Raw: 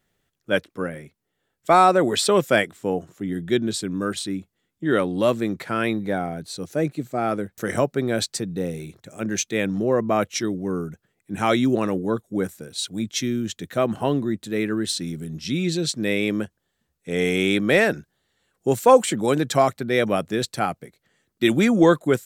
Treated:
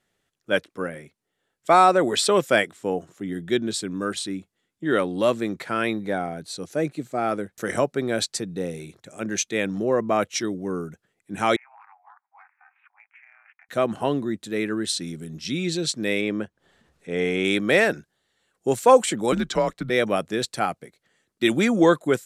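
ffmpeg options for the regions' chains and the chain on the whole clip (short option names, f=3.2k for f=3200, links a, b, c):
-filter_complex "[0:a]asettb=1/sr,asplit=3[a][b][c];[a]atrim=end=11.564[d];[b]atrim=start=11.56:end=13.69,asetpts=PTS-STARTPTS,afade=t=in:d=0.004:c=qsin,afade=t=out:st=2.126:d=0.004:c=qsin,tremolo=f=280:d=1,asuperpass=centerf=1400:order=20:qfactor=0.83,acompressor=threshold=-46dB:ratio=10:attack=3.2:release=140:knee=1:detection=peak[e];[c]atrim=start=13.686[f];[d][e]acrossfade=d=0.004:c1=hsin:c2=qsin[g];[g][f]acrossfade=d=0.004:c1=qsin:c2=hsin,asettb=1/sr,asplit=3[h][i][j];[h]atrim=end=16.214[k];[i]atrim=start=16.21:end=17.45,asetpts=PTS-STARTPTS,afade=t=in:d=0.004:c=qsin,afade=t=out:st=1.236:d=0.004:c=qsin,lowpass=f=2.4k:p=1,acompressor=mode=upward:threshold=-42dB:ratio=2.5:attack=3.2:release=140:knee=2.83:detection=peak[l];[j]atrim=start=17.446[m];[k][l]acrossfade=d=0.004:c1=hsin:c2=qsin[n];[n][m]acrossfade=d=0.004:c1=qsin:c2=hsin,asettb=1/sr,asplit=3[o][p][q];[o]atrim=end=19.324[r];[p]atrim=start=19.32:end=19.9,asetpts=PTS-STARTPTS,afade=t=in:d=0.004:c=qsin,afade=t=out:st=0.576:d=0.004:c=qsin,equalizer=f=290:w=1.6:g=7,acrossover=split=220|820|6900[s][t][u][v];[s]acompressor=threshold=-42dB:ratio=3[w];[t]acompressor=threshold=-20dB:ratio=3[x];[u]acompressor=threshold=-27dB:ratio=3[y];[v]acompressor=threshold=-57dB:ratio=3[z];[w][x][y][z]amix=inputs=4:normalize=0,afreqshift=-100[aa];[q]atrim=start=19.896[ab];[r][aa]acrossfade=d=0.004:c1=hsin:c2=qsin[ac];[ac][ab]acrossfade=d=0.004:c1=qsin:c2=hsin,lowpass=f=12k:w=0.5412,lowpass=f=12k:w=1.3066,lowshelf=f=180:g=-8"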